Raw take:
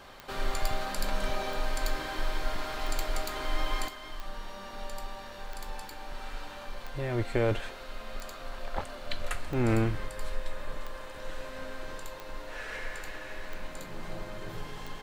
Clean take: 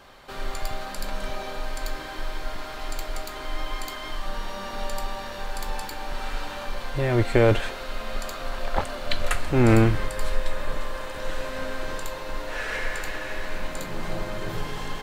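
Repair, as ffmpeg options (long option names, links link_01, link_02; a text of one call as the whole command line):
ffmpeg -i in.wav -af "adeclick=threshold=4,asetnsamples=nb_out_samples=441:pad=0,asendcmd='3.88 volume volume 9dB',volume=0dB" out.wav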